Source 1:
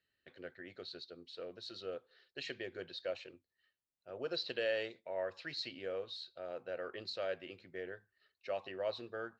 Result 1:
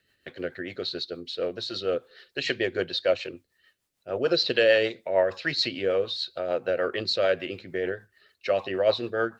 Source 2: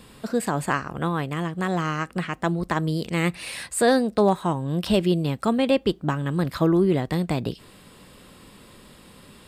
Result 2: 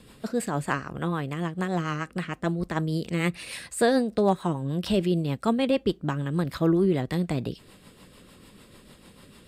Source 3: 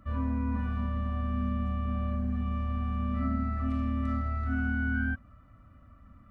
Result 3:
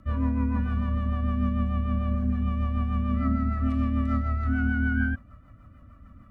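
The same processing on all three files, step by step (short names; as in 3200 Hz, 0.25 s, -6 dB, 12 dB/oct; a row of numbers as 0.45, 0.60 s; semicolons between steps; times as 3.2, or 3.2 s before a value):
rotary speaker horn 6.7 Hz; match loudness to -27 LUFS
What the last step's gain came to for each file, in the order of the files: +18.0, -1.0, +6.0 dB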